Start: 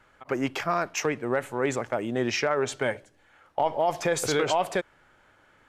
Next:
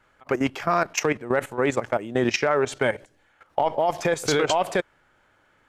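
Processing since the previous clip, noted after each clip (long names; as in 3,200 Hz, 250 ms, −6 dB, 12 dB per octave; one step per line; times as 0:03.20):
output level in coarse steps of 14 dB
level +7.5 dB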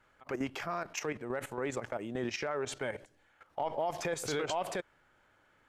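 brickwall limiter −19 dBFS, peak gain reduction 11 dB
level −5.5 dB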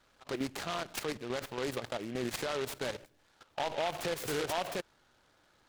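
short delay modulated by noise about 2,100 Hz, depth 0.091 ms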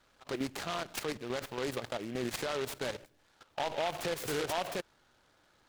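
one scale factor per block 7 bits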